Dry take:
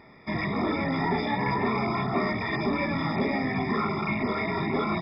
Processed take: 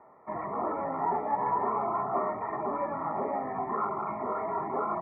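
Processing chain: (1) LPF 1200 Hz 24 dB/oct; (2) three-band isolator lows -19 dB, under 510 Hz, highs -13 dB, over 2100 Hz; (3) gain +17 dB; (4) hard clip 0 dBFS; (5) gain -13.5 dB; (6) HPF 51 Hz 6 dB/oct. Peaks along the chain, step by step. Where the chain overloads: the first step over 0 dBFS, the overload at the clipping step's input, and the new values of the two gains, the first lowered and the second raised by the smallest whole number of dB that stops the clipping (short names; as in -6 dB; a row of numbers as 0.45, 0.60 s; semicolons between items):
-16.0, -20.5, -3.5, -3.5, -17.0, -17.0 dBFS; no overload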